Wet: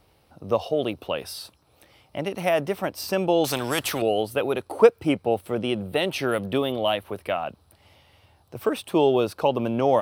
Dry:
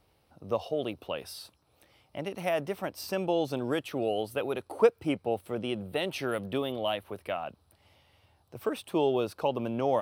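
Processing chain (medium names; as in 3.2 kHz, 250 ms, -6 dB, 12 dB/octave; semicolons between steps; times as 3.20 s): 3.44–4.02 s: spectrum-flattening compressor 2:1; trim +7 dB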